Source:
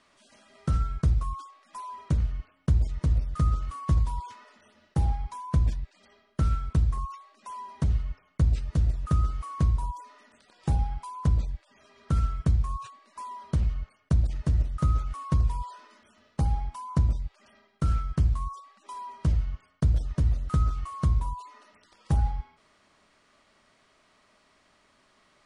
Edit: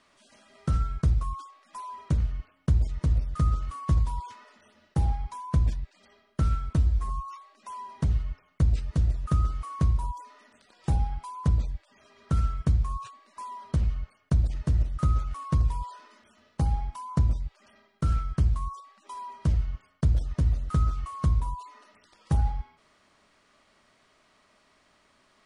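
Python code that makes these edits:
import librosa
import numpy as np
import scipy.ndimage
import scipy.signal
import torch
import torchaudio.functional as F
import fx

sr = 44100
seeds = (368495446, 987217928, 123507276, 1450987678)

y = fx.edit(x, sr, fx.stretch_span(start_s=6.75, length_s=0.41, factor=1.5), tone=tone)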